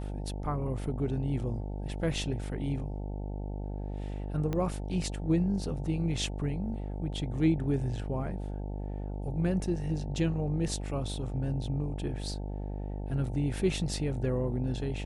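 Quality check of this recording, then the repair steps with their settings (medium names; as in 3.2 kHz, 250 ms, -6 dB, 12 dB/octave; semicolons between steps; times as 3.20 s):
buzz 50 Hz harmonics 18 -36 dBFS
4.53 s: pop -20 dBFS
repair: de-click; de-hum 50 Hz, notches 18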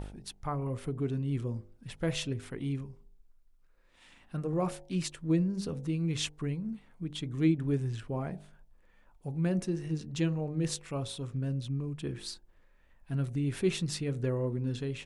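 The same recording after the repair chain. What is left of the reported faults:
4.53 s: pop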